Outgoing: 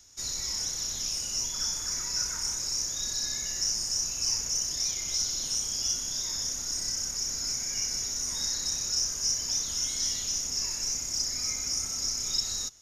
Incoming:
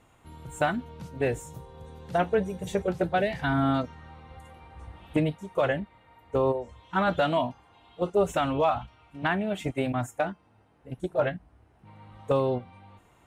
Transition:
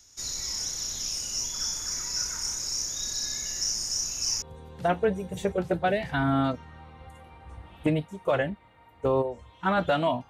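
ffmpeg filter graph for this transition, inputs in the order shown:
ffmpeg -i cue0.wav -i cue1.wav -filter_complex "[0:a]apad=whole_dur=10.29,atrim=end=10.29,atrim=end=4.422[link_01];[1:a]atrim=start=1.718:end=7.59[link_02];[link_01][link_02]acrossfade=duration=0.004:curve1=hsin:curve2=hsin" out.wav

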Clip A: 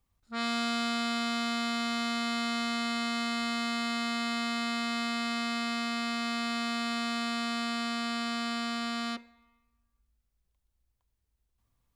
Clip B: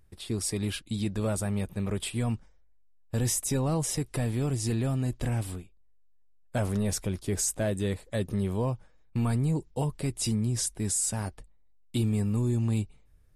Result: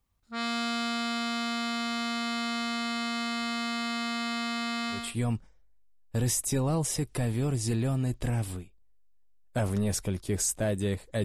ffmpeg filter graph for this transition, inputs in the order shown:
ffmpeg -i cue0.wav -i cue1.wav -filter_complex "[0:a]apad=whole_dur=11.24,atrim=end=11.24,atrim=end=5.15,asetpts=PTS-STARTPTS[link_01];[1:a]atrim=start=1.88:end=8.23,asetpts=PTS-STARTPTS[link_02];[link_01][link_02]acrossfade=duration=0.26:curve1=tri:curve2=tri" out.wav

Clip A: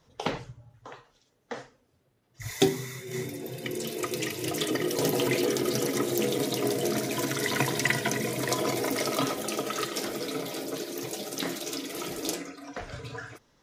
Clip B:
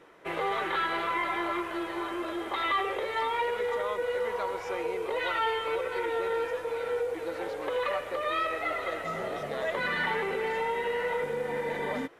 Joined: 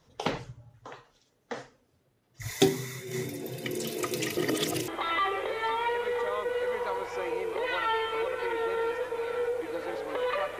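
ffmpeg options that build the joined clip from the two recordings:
ffmpeg -i cue0.wav -i cue1.wav -filter_complex "[0:a]apad=whole_dur=10.59,atrim=end=10.59,asplit=2[link_01][link_02];[link_01]atrim=end=4.372[link_03];[link_02]atrim=start=4.368:end=4.882,asetpts=PTS-STARTPTS,areverse[link_04];[1:a]atrim=start=2.408:end=8.12[link_05];[link_03][link_04]acrossfade=duration=0.004:curve1=hsin:curve2=hsin[link_06];[link_06][link_05]acrossfade=duration=0.004:curve1=hsin:curve2=hsin" out.wav

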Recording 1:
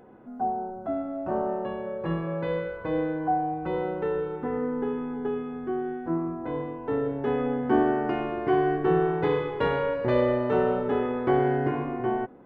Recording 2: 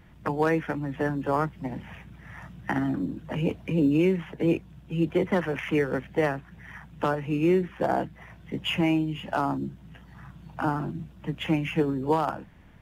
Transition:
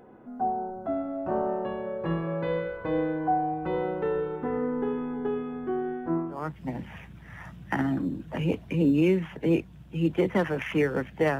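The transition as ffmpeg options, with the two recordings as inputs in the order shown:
ffmpeg -i cue0.wav -i cue1.wav -filter_complex "[0:a]apad=whole_dur=11.39,atrim=end=11.39,atrim=end=6.57,asetpts=PTS-STARTPTS[link_01];[1:a]atrim=start=1.16:end=6.36,asetpts=PTS-STARTPTS[link_02];[link_01][link_02]acrossfade=duration=0.38:curve1=qua:curve2=qua" out.wav

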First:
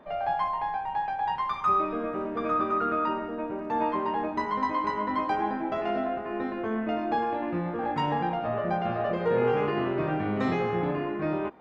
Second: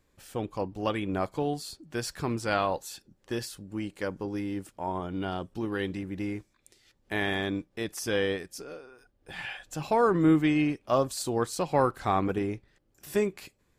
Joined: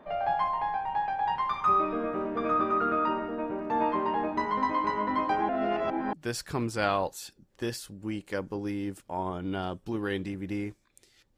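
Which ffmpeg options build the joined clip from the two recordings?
ffmpeg -i cue0.wav -i cue1.wav -filter_complex "[0:a]apad=whole_dur=11.37,atrim=end=11.37,asplit=2[link_01][link_02];[link_01]atrim=end=5.492[link_03];[link_02]atrim=start=5.488:end=6.132,asetpts=PTS-STARTPTS,areverse[link_04];[1:a]atrim=start=1.818:end=7.06[link_05];[link_03][link_04]acrossfade=duration=0.004:curve1=hsin:curve2=hsin[link_06];[link_06][link_05]acrossfade=duration=0.004:curve1=hsin:curve2=hsin" out.wav

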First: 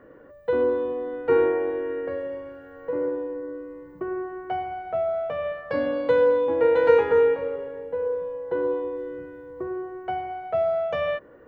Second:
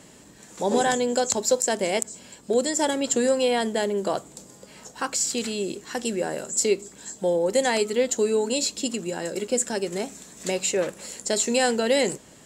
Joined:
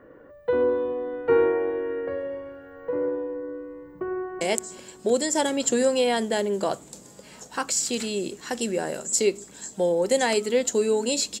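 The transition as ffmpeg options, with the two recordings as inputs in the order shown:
ffmpeg -i cue0.wav -i cue1.wav -filter_complex "[0:a]apad=whole_dur=11.4,atrim=end=11.4,atrim=end=4.412[link_01];[1:a]atrim=start=1.848:end=8.84[link_02];[link_01][link_02]acrossfade=duration=0.004:curve1=hsin:curve2=hsin,asplit=2[link_03][link_04];[link_04]afade=type=in:start_time=3.93:duration=0.01,afade=type=out:start_time=4.41:duration=0.01,aecho=0:1:380|760|1140:0.298538|0.0895615|0.0268684[link_05];[link_03][link_05]amix=inputs=2:normalize=0" out.wav

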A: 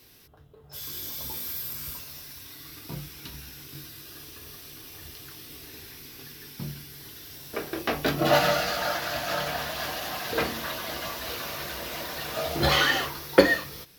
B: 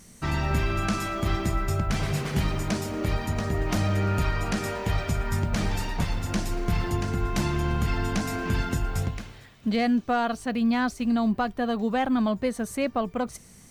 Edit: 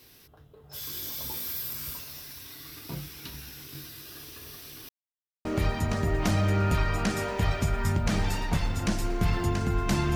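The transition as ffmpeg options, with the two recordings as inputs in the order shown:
ffmpeg -i cue0.wav -i cue1.wav -filter_complex "[0:a]apad=whole_dur=10.15,atrim=end=10.15,asplit=2[link_01][link_02];[link_01]atrim=end=4.89,asetpts=PTS-STARTPTS,afade=type=out:start_time=4.886:duration=0.004:curve=hsin[link_03];[link_02]atrim=start=4.89:end=5.45,asetpts=PTS-STARTPTS,volume=0[link_04];[1:a]atrim=start=2.92:end=7.62,asetpts=PTS-STARTPTS,afade=type=in:duration=0.004:curve=hsin[link_05];[link_03][link_04][link_05]concat=n=3:v=0:a=1" out.wav

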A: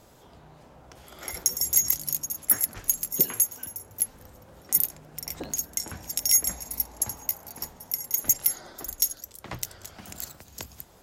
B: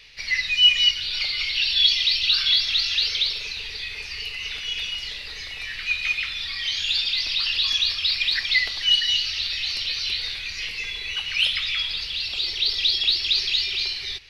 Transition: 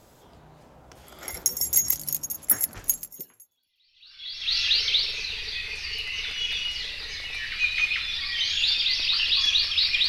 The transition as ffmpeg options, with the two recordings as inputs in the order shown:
ffmpeg -i cue0.wav -i cue1.wav -filter_complex "[0:a]apad=whole_dur=10.08,atrim=end=10.08,atrim=end=4.57,asetpts=PTS-STARTPTS[link_01];[1:a]atrim=start=1.2:end=8.35,asetpts=PTS-STARTPTS[link_02];[link_01][link_02]acrossfade=duration=1.64:curve1=exp:curve2=exp" out.wav

